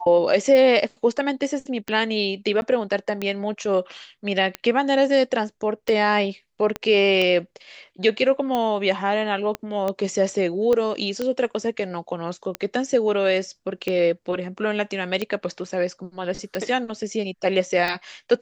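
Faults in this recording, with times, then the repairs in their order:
scratch tick 45 rpm −12 dBFS
0:02.61–0:02.62: drop-out 11 ms
0:06.76: click −13 dBFS
0:09.55: click −13 dBFS
0:10.73: click −12 dBFS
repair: click removal
repair the gap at 0:02.61, 11 ms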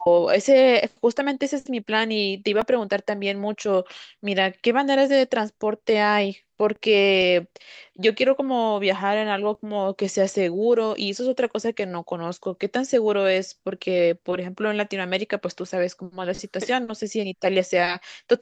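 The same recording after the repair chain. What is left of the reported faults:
0:06.76: click
0:09.55: click
0:10.73: click

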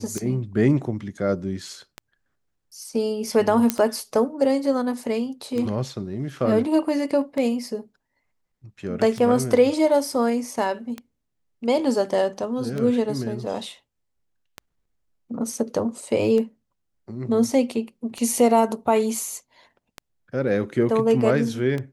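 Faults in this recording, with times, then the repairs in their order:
scratch tick 33 1/3 rpm −16 dBFS
0:03.70: click −4 dBFS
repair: click removal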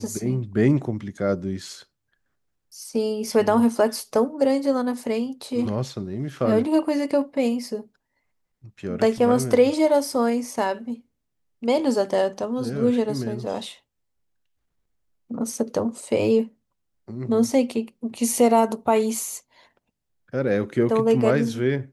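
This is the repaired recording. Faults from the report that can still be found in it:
none of them is left

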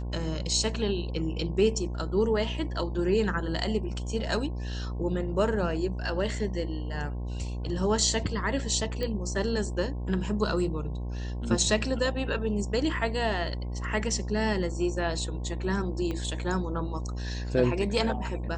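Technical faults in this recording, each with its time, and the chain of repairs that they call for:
mains buzz 60 Hz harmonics 18 −33 dBFS
0:09.03: click −20 dBFS
0:16.11: click −21 dBFS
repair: click removal
hum removal 60 Hz, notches 18

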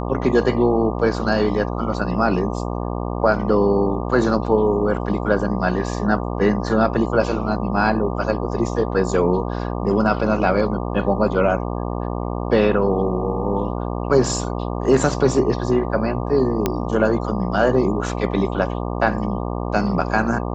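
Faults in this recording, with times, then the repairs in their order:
mains buzz 60 Hz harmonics 20 −25 dBFS
0:16.66: click −5 dBFS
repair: click removal
hum removal 60 Hz, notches 20

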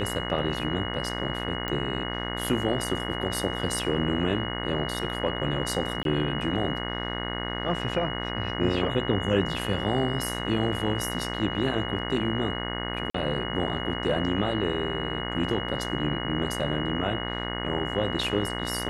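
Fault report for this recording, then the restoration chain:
mains buzz 60 Hz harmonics 36 −33 dBFS
whistle 2,900 Hz −35 dBFS
0:01.68: click −16 dBFS
0:06.03–0:06.05: drop-out 22 ms
0:13.10–0:13.14: drop-out 44 ms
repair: click removal
notch filter 2,900 Hz, Q 30
hum removal 60 Hz, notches 36
repair the gap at 0:06.03, 22 ms
repair the gap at 0:13.10, 44 ms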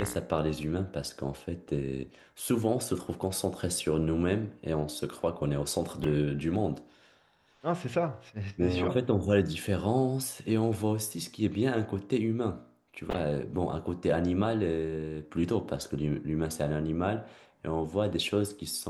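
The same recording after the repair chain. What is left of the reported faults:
none of them is left

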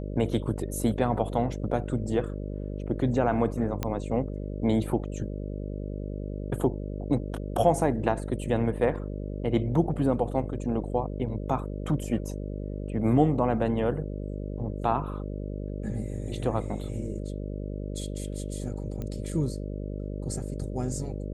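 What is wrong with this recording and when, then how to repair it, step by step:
mains buzz 50 Hz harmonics 12 −34 dBFS
0:03.83: click −14 dBFS
0:19.02: click −23 dBFS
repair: click removal
hum removal 50 Hz, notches 12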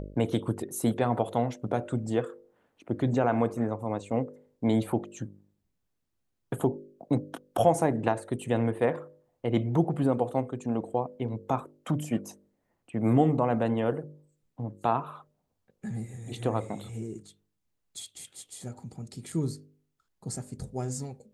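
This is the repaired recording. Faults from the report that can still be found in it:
none of them is left

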